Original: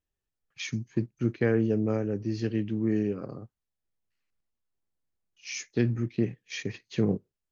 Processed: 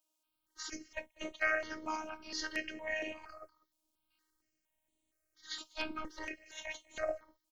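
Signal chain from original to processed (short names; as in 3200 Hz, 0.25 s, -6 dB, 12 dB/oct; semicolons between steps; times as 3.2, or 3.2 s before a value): 5.68–7.1 transient shaper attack -6 dB, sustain +3 dB; spectral gate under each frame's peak -20 dB weak; robotiser 312 Hz; on a send: echo 0.196 s -22.5 dB; on the sum: step phaser 4.3 Hz 480–5100 Hz; gain +14 dB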